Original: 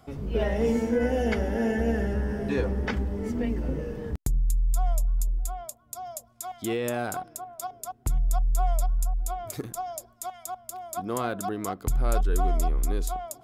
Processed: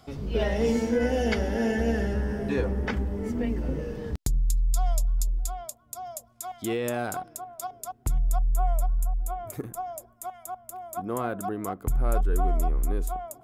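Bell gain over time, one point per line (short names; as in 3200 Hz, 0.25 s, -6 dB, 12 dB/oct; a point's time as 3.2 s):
bell 4500 Hz 1.3 oct
2.01 s +7.5 dB
2.6 s -2 dB
3.33 s -2 dB
4.29 s +8.5 dB
5.34 s +8.5 dB
5.95 s -1 dB
8.2 s -1 dB
8.6 s -13 dB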